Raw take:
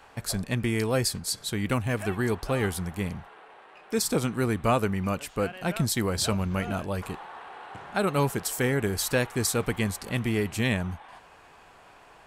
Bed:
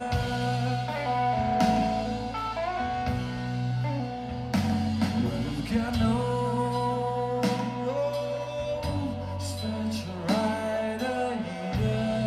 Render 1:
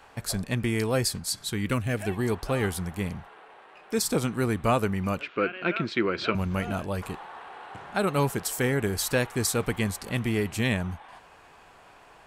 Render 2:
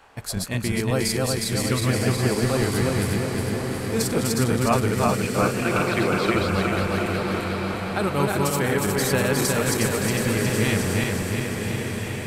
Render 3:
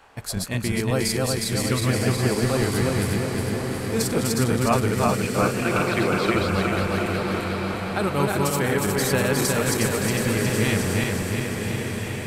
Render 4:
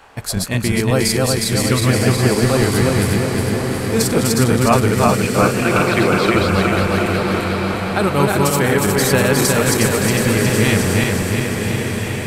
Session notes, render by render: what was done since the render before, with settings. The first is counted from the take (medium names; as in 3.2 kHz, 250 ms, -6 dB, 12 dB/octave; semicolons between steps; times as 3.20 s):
1.21–2.27 s: peaking EQ 380 Hz -> 1.6 kHz -14.5 dB 0.26 oct; 5.21–6.35 s: cabinet simulation 210–3800 Hz, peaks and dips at 350 Hz +9 dB, 800 Hz -9 dB, 1.4 kHz +8 dB, 2.4 kHz +9 dB
backward echo that repeats 181 ms, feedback 75%, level -1 dB; echo that smears into a reverb 1132 ms, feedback 40%, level -6 dB
no audible change
trim +7 dB; peak limiter -2 dBFS, peak gain reduction 1.5 dB